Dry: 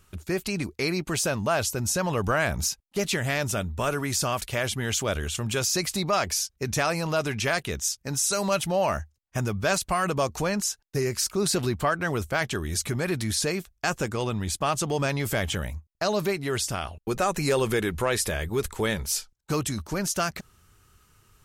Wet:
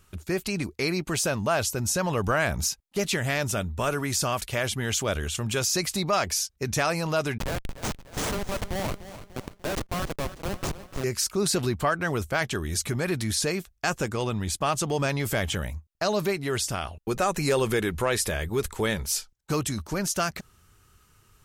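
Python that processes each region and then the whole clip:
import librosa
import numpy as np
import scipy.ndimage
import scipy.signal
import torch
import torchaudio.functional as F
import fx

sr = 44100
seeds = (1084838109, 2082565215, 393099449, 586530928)

y = fx.chain(x, sr, fx.highpass(hz=270.0, slope=6),
    fx.schmitt(flips_db=-22.0),
    fx.echo_crushed(ms=296, feedback_pct=55, bits=9, wet_db=-13.5), at=(7.38, 11.04))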